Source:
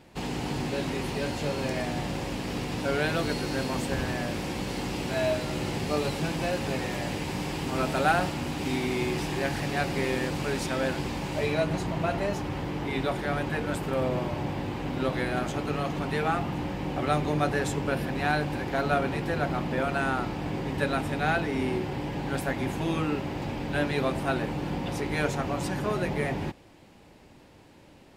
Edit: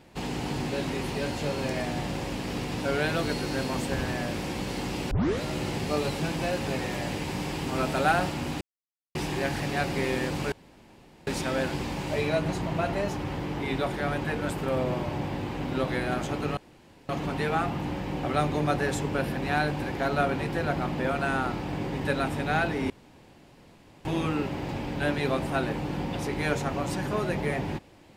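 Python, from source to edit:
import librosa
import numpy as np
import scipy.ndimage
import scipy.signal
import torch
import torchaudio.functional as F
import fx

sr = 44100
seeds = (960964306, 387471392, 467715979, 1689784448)

y = fx.edit(x, sr, fx.tape_start(start_s=5.11, length_s=0.31),
    fx.silence(start_s=8.61, length_s=0.54),
    fx.insert_room_tone(at_s=10.52, length_s=0.75),
    fx.insert_room_tone(at_s=15.82, length_s=0.52),
    fx.room_tone_fill(start_s=21.63, length_s=1.15), tone=tone)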